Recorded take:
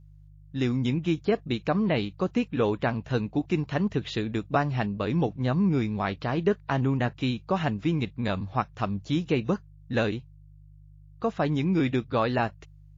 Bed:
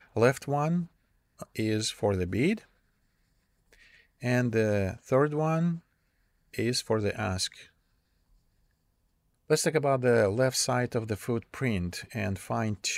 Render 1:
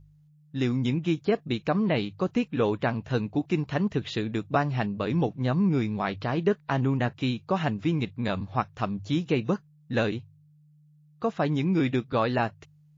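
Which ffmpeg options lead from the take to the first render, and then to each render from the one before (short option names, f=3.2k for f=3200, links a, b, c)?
-af "bandreject=f=50:t=h:w=4,bandreject=f=100:t=h:w=4"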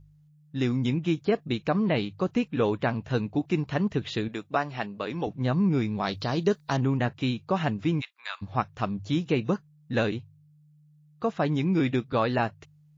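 -filter_complex "[0:a]asettb=1/sr,asplit=3[a][b][c];[a]atrim=end=4.284[d];[b]atrim=start=4.28:end=5.27,asetpts=PTS-STARTPTS,afade=t=in:d=0.004:c=qsin,afade=t=out:st=0.986:d=0.004:c=qsin,highpass=f=460:p=1[e];[c]atrim=start=5.266[f];[d][e]acrossfade=d=0.004:c1=hsin:c2=qsin[g];[g][f]acrossfade=d=0.004:c1=qsin:c2=hsin,asettb=1/sr,asplit=3[h][i][j];[h]atrim=end=6.034[k];[i]atrim=start=6.03:end=6.77,asetpts=PTS-STARTPTS,afade=t=in:d=0.004:c=qsin,afade=t=out:st=0.736:d=0.004:c=qsin,highshelf=f=3.3k:t=q:w=1.5:g=9.5[l];[j]atrim=start=6.766[m];[k][l]acrossfade=d=0.004:c1=hsin:c2=qsin[n];[n][m]acrossfade=d=0.004:c1=qsin:c2=hsin,asplit=3[o][p][q];[o]afade=t=out:st=8:d=0.02[r];[p]highpass=f=1.1k:w=0.5412,highpass=f=1.1k:w=1.3066,afade=t=in:st=8:d=0.02,afade=t=out:st=8.41:d=0.02[s];[q]afade=t=in:st=8.41:d=0.02[t];[r][s][t]amix=inputs=3:normalize=0"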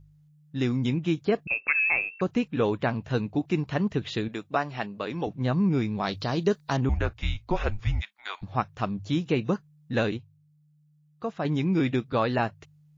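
-filter_complex "[0:a]asettb=1/sr,asplit=3[a][b][c];[a]atrim=end=1.474[d];[b]atrim=start=1.47:end=2.21,asetpts=PTS-STARTPTS,afade=t=in:d=0.004:c=qsin,afade=t=out:st=0.736:d=0.004:c=qsin,lowpass=f=2.4k:t=q:w=0.5098,lowpass=f=2.4k:t=q:w=0.6013,lowpass=f=2.4k:t=q:w=0.9,lowpass=f=2.4k:t=q:w=2.563,afreqshift=-2800[e];[c]atrim=start=2.206[f];[d][e]acrossfade=d=0.004:c1=hsin:c2=qsin[g];[g][f]acrossfade=d=0.004:c1=qsin:c2=hsin,asettb=1/sr,asplit=3[h][i][j];[h]atrim=end=6.894[k];[i]atrim=start=6.89:end=8.43,asetpts=PTS-STARTPTS,afade=t=in:d=0.004:c=qsin,afade=t=out:st=1.536:d=0.004:c=qsin,afreqshift=-210[l];[j]atrim=start=8.426[m];[k][l]acrossfade=d=0.004:c1=hsin:c2=qsin[n];[n][m]acrossfade=d=0.004:c1=qsin:c2=hsin,asplit=3[o][p][q];[o]atrim=end=10.172[r];[p]atrim=start=10.168:end=11.452,asetpts=PTS-STARTPTS,volume=-4.5dB[s];[q]atrim=start=11.448[t];[r][s]acrossfade=d=0.004:c1=hsin:c2=hsin[u];[u][t]acrossfade=d=0.004:c1=hsin:c2=hsin"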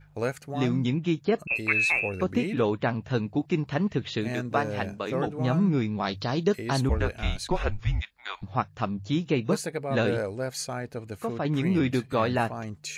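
-filter_complex "[1:a]volume=-6dB[a];[0:a][a]amix=inputs=2:normalize=0"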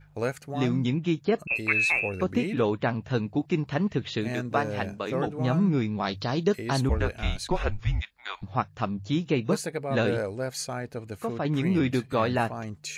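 -af anull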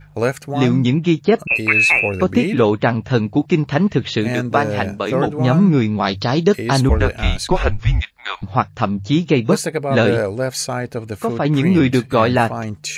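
-af "volume=10.5dB,alimiter=limit=-2dB:level=0:latency=1"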